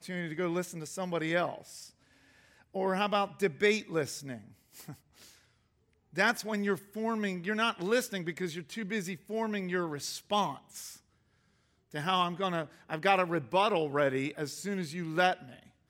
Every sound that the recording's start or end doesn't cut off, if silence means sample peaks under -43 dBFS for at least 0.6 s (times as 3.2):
2.75–5.23
6.16–10.96